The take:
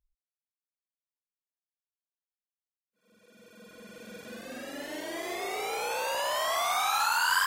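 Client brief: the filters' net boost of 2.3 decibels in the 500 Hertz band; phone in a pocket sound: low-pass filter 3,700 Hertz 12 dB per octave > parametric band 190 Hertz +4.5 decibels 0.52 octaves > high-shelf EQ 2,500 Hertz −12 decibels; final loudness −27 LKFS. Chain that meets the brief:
low-pass filter 3,700 Hz 12 dB per octave
parametric band 190 Hz +4.5 dB 0.52 octaves
parametric band 500 Hz +3.5 dB
high-shelf EQ 2,500 Hz −12 dB
level +5.5 dB

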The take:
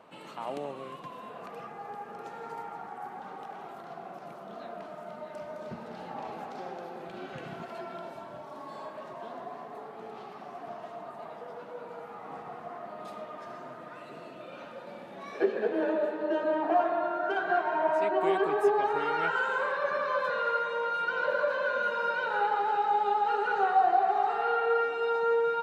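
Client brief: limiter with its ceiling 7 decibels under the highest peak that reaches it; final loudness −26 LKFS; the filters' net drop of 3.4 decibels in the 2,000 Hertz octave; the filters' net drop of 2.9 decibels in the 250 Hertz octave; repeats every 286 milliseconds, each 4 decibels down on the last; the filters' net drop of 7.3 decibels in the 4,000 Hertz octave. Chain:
parametric band 250 Hz −4.5 dB
parametric band 2,000 Hz −4 dB
parametric band 4,000 Hz −8.5 dB
brickwall limiter −22 dBFS
repeating echo 286 ms, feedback 63%, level −4 dB
level +5.5 dB

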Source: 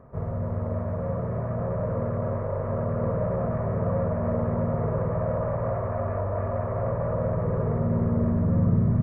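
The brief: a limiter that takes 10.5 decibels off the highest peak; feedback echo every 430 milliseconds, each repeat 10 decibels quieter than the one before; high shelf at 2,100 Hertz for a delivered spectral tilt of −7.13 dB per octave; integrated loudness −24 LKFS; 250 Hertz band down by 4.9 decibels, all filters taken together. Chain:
parametric band 250 Hz −7.5 dB
high-shelf EQ 2,100 Hz +8 dB
brickwall limiter −24 dBFS
repeating echo 430 ms, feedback 32%, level −10 dB
level +7.5 dB

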